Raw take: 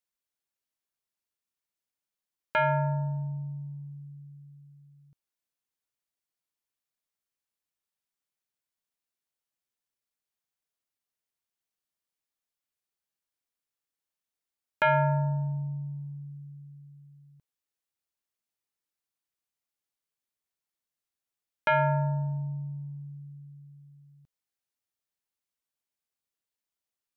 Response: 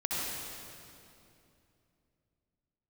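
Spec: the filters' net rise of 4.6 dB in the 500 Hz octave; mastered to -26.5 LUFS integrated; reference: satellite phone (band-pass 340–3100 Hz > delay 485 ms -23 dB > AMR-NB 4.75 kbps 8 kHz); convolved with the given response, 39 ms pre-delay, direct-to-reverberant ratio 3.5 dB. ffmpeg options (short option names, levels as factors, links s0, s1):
-filter_complex "[0:a]equalizer=f=500:t=o:g=7,asplit=2[s0][s1];[1:a]atrim=start_sample=2205,adelay=39[s2];[s1][s2]afir=irnorm=-1:irlink=0,volume=0.299[s3];[s0][s3]amix=inputs=2:normalize=0,highpass=340,lowpass=3100,aecho=1:1:485:0.0708,volume=1.19" -ar 8000 -c:a libopencore_amrnb -b:a 4750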